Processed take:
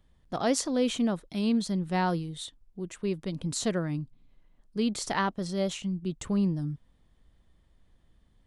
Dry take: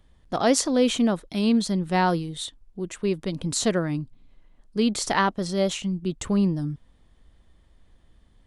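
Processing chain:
parametric band 150 Hz +3.5 dB 0.91 octaves
level −6.5 dB

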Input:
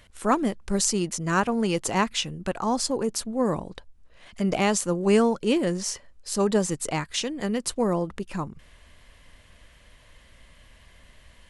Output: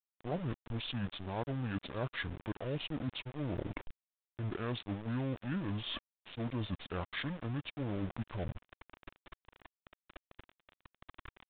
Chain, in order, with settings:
reversed playback
downward compressor 5 to 1, threshold −39 dBFS, peak gain reduction 20.5 dB
reversed playback
centre clipping without the shift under −43 dBFS
pitch shifter −9.5 semitones
downsampling to 8,000 Hz
level +3 dB

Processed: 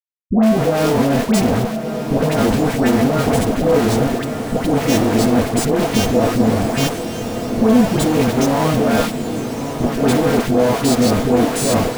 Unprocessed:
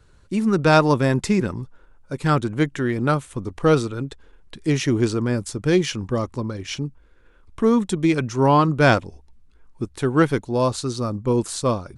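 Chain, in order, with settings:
every partial snapped to a pitch grid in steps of 2 semitones
comparator with hysteresis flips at −30.5 dBFS
hollow resonant body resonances 250/470/660 Hz, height 14 dB, ringing for 35 ms
all-pass dispersion highs, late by 121 ms, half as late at 930 Hz
on a send: feedback delay with all-pass diffusion 1,277 ms, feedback 60%, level −8.5 dB
on the sum: level −1 dB

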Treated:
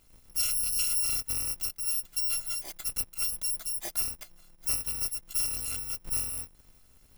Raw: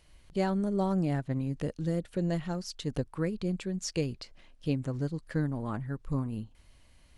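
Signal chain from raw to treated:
samples in bit-reversed order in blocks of 256 samples

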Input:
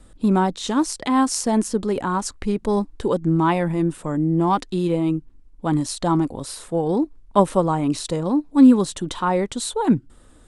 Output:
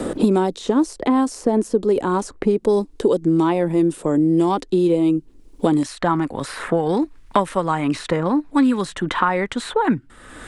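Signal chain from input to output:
parametric band 410 Hz +12.5 dB 1.5 octaves, from 0:05.83 1,800 Hz
multiband upward and downward compressor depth 100%
level −5.5 dB

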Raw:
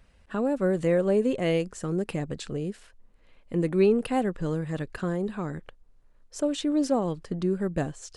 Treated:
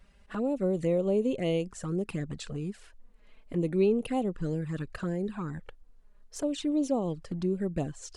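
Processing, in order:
in parallel at +1.5 dB: downward compressor 10 to 1, threshold −35 dBFS, peak gain reduction 18 dB
on the sum: flanger swept by the level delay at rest 5.6 ms, full sweep at −20 dBFS
level −4.5 dB

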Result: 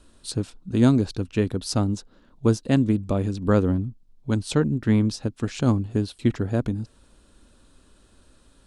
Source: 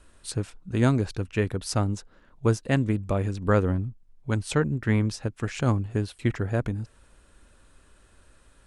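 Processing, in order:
octave-band graphic EQ 250/2,000/4,000 Hz +7/−6/+6 dB

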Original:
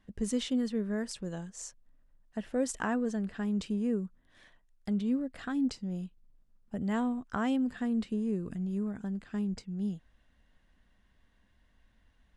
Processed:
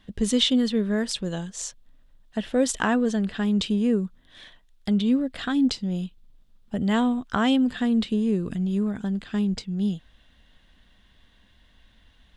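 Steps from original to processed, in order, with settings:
parametric band 3,500 Hz +11 dB 0.7 octaves
level +8.5 dB

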